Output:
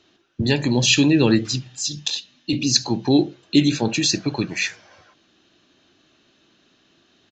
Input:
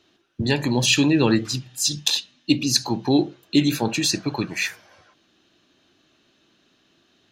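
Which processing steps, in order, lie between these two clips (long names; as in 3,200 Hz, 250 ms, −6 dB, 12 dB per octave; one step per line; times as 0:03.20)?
dynamic equaliser 1,100 Hz, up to −6 dB, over −40 dBFS, Q 1.2
0:01.72–0:02.53: downward compressor 2 to 1, threshold −28 dBFS, peak gain reduction 8.5 dB
downsampling to 16,000 Hz
level +2.5 dB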